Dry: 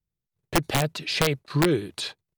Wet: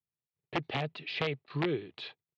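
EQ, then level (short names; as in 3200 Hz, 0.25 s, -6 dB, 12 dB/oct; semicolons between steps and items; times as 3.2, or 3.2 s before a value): speaker cabinet 150–3400 Hz, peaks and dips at 200 Hz -7 dB, 310 Hz -5 dB, 560 Hz -5 dB, 1000 Hz -4 dB, 1500 Hz -7 dB; -6.0 dB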